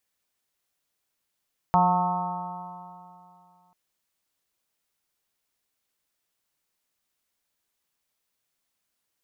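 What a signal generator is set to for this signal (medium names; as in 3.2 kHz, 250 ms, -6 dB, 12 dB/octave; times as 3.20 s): stretched partials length 1.99 s, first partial 176 Hz, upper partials -17/-14.5/1/5/-2/-7 dB, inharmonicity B 0.0018, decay 2.62 s, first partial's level -23 dB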